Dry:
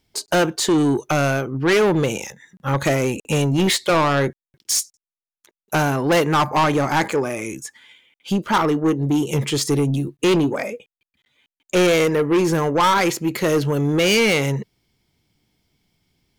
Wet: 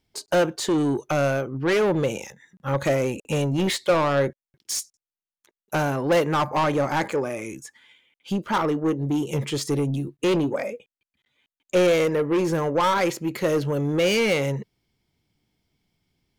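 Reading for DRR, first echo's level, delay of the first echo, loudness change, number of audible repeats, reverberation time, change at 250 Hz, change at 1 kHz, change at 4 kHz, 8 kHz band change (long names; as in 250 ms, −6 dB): no reverb audible, no echo audible, no echo audible, −4.5 dB, no echo audible, no reverb audible, −5.0 dB, −5.0 dB, −7.0 dB, −8.0 dB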